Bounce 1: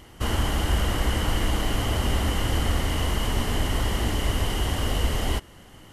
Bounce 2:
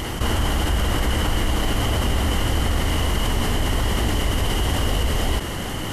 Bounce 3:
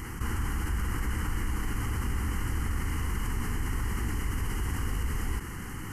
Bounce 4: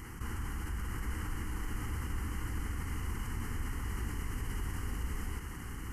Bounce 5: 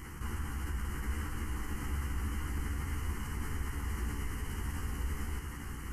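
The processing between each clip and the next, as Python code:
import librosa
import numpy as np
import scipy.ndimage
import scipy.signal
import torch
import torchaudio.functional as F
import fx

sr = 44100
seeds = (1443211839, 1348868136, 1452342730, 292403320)

y1 = fx.env_flatten(x, sr, amount_pct=70)
y2 = fx.fixed_phaser(y1, sr, hz=1500.0, stages=4)
y2 = y2 * librosa.db_to_amplitude(-8.5)
y3 = y2 + 10.0 ** (-6.5 / 20.0) * np.pad(y2, (int(853 * sr / 1000.0), 0))[:len(y2)]
y3 = y3 * librosa.db_to_amplitude(-7.5)
y4 = fx.doubler(y3, sr, ms=14.0, db=-3.5)
y4 = y4 * librosa.db_to_amplitude(-1.0)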